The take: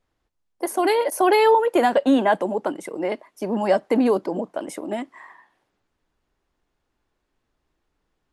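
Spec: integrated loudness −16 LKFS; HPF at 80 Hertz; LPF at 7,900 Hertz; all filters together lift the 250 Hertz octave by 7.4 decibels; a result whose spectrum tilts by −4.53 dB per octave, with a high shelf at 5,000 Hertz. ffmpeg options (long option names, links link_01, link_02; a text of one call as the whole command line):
ffmpeg -i in.wav -af "highpass=80,lowpass=7900,equalizer=frequency=250:width_type=o:gain=8.5,highshelf=frequency=5000:gain=4.5,volume=1.5dB" out.wav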